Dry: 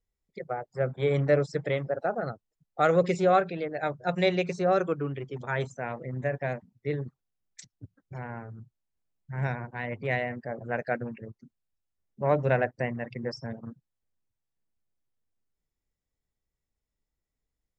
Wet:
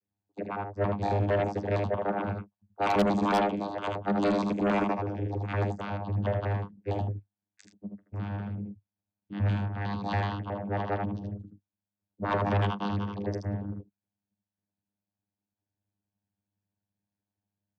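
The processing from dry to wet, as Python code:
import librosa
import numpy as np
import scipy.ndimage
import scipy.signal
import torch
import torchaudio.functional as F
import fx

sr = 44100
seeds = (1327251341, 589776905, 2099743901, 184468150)

y = fx.pitch_trill(x, sr, semitones=10.0, every_ms=92)
y = y + 0.54 * np.pad(y, (int(5.5 * sr / 1000.0), 0))[:len(y)]
y = fx.vocoder(y, sr, bands=16, carrier='saw', carrier_hz=101.0)
y = fx.room_early_taps(y, sr, ms=(43, 78), db=(-18.0, -4.5))
y = fx.cheby_harmonics(y, sr, harmonics=(5,), levels_db=(-12,), full_scale_db=-11.0)
y = y * librosa.db_to_amplitude(-6.0)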